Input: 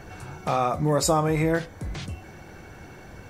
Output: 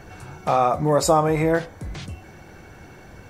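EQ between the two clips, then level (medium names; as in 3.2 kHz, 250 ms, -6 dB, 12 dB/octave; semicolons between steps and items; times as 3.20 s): dynamic bell 730 Hz, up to +6 dB, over -36 dBFS, Q 0.7; 0.0 dB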